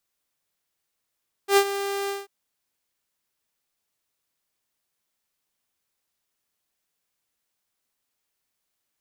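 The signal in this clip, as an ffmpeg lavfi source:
-f lavfi -i "aevalsrc='0.299*(2*mod(398*t,1)-1)':d=0.791:s=44100,afade=t=in:d=0.088,afade=t=out:st=0.088:d=0.07:silence=0.224,afade=t=out:st=0.61:d=0.181"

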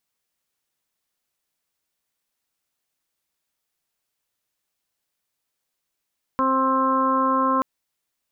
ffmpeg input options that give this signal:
-f lavfi -i "aevalsrc='0.0631*sin(2*PI*264*t)+0.0473*sin(2*PI*528*t)+0.0126*sin(2*PI*792*t)+0.106*sin(2*PI*1056*t)+0.0447*sin(2*PI*1320*t)+0.00944*sin(2*PI*1584*t)':d=1.23:s=44100"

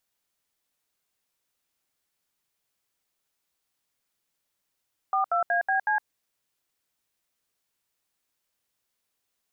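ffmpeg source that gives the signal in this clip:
-f lavfi -i "aevalsrc='0.0631*clip(min(mod(t,0.185),0.113-mod(t,0.185))/0.002,0,1)*(eq(floor(t/0.185),0)*(sin(2*PI*770*mod(t,0.185))+sin(2*PI*1209*mod(t,0.185)))+eq(floor(t/0.185),1)*(sin(2*PI*697*mod(t,0.185))+sin(2*PI*1336*mod(t,0.185)))+eq(floor(t/0.185),2)*(sin(2*PI*697*mod(t,0.185))+sin(2*PI*1633*mod(t,0.185)))+eq(floor(t/0.185),3)*(sin(2*PI*770*mod(t,0.185))+sin(2*PI*1633*mod(t,0.185)))+eq(floor(t/0.185),4)*(sin(2*PI*852*mod(t,0.185))+sin(2*PI*1633*mod(t,0.185))))':d=0.925:s=44100"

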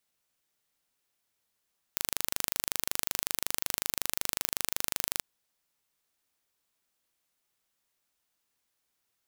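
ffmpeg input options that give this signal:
-f lavfi -i "aevalsrc='0.841*eq(mod(n,1736),0)':d=3.25:s=44100"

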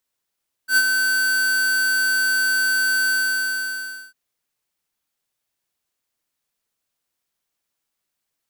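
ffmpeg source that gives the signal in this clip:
-f lavfi -i "aevalsrc='0.2*(2*lt(mod(1530*t,1),0.5)-1)':d=3.45:s=44100,afade=t=in:d=0.089,afade=t=out:st=0.089:d=0.051:silence=0.531,afade=t=out:st=2.42:d=1.03"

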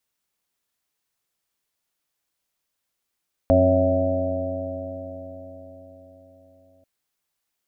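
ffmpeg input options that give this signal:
-f lavfi -i "aevalsrc='0.106*pow(10,-3*t/4.69)*sin(2*PI*88.9*t)+0.0266*pow(10,-3*t/4.69)*sin(2*PI*178.38*t)+0.112*pow(10,-3*t/4.69)*sin(2*PI*269.02*t)+0.0133*pow(10,-3*t/4.69)*sin(2*PI*361.4*t)+0.0141*pow(10,-3*t/4.69)*sin(2*PI*456.05*t)+0.141*pow(10,-3*t/4.69)*sin(2*PI*553.5*t)+0.141*pow(10,-3*t/4.69)*sin(2*PI*654.25*t)+0.0251*pow(10,-3*t/4.69)*sin(2*PI*758.77*t)':d=3.34:s=44100"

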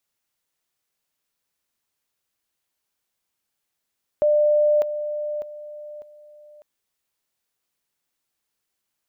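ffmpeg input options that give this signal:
-f lavfi -i "aevalsrc='pow(10,(-14.5-10*floor(t/0.6))/20)*sin(2*PI*597*t)':d=2.4:s=44100"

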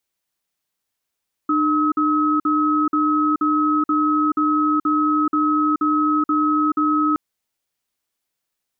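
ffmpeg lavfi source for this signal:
-f lavfi -i "aevalsrc='0.126*(sin(2*PI*302*t)+sin(2*PI*1280*t))*clip(min(mod(t,0.48),0.43-mod(t,0.48))/0.005,0,1)':d=5.67:s=44100"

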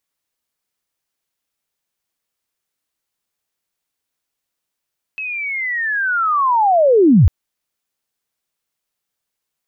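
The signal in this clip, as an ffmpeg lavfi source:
-f lavfi -i "aevalsrc='pow(10,(-22.5+17*t/2.1)/20)*sin(2*PI*(2600*t-2539*t*t/(2*2.1)))':d=2.1:s=44100"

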